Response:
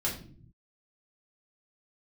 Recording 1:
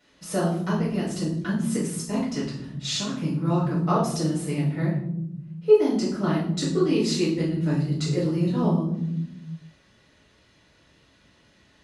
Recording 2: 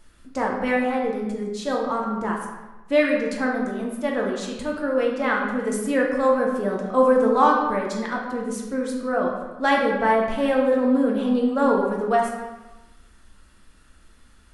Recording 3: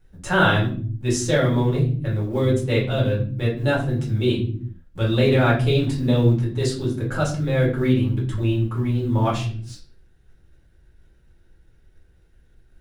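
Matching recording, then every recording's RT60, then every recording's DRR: 3; 0.80 s, 1.1 s, not exponential; -8.5, -1.5, -5.5 dB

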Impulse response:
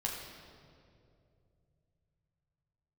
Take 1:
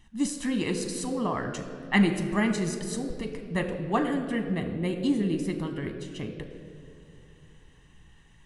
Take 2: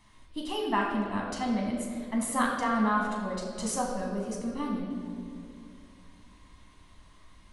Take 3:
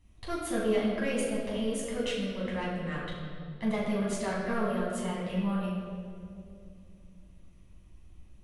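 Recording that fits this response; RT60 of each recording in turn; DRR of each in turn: 2; 2.7, 2.6, 2.5 s; 5.0, -2.0, -6.5 dB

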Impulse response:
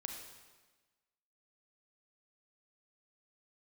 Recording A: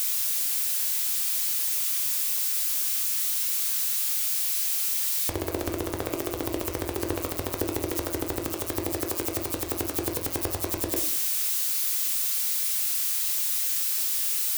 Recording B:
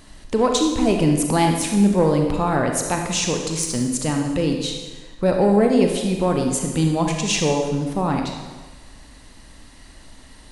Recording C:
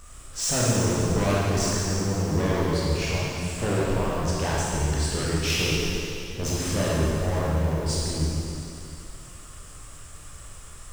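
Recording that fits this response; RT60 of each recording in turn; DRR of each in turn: B; 0.60, 1.3, 2.8 s; 2.5, 2.5, -6.5 dB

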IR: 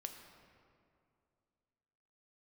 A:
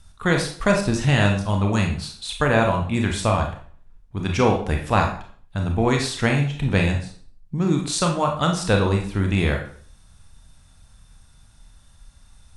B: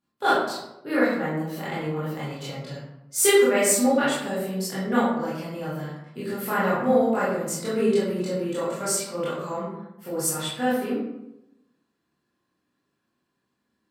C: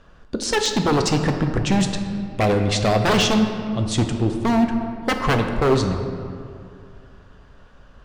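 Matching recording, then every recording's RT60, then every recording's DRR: C; 0.50, 0.90, 2.5 s; 2.0, -10.5, 4.5 dB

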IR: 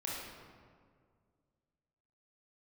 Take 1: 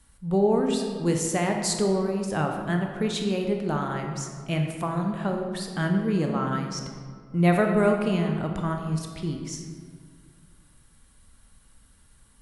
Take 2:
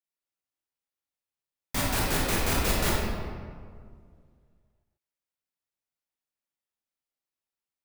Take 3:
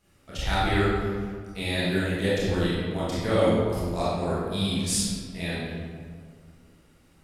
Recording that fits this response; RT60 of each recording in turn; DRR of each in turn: 2; 2.0, 2.0, 2.0 s; 2.5, -5.0, -10.5 dB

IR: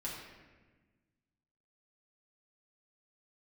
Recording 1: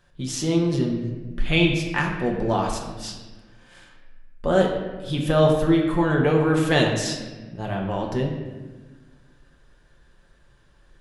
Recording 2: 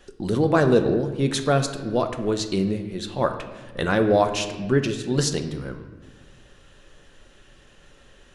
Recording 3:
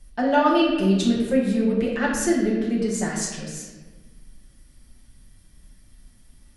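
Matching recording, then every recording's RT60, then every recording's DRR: 3; 1.3, 1.4, 1.3 s; -0.5, 6.5, -5.5 dB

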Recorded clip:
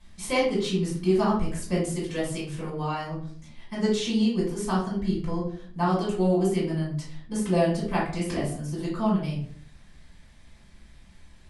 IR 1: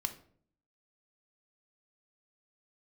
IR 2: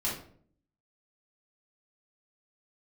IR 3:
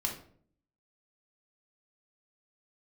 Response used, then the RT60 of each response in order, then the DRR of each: 2; 0.55, 0.55, 0.55 s; 7.5, -6.5, 0.5 dB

